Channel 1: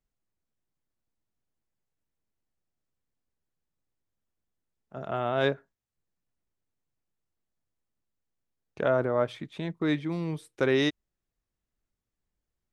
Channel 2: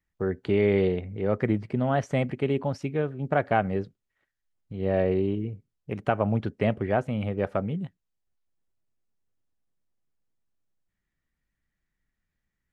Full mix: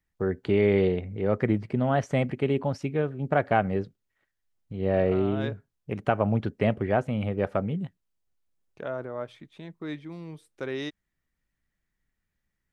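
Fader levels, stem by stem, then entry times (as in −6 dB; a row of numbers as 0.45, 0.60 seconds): −8.5, +0.5 decibels; 0.00, 0.00 seconds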